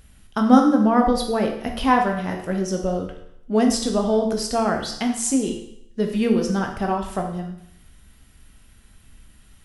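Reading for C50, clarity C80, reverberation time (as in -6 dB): 6.5 dB, 9.0 dB, 0.75 s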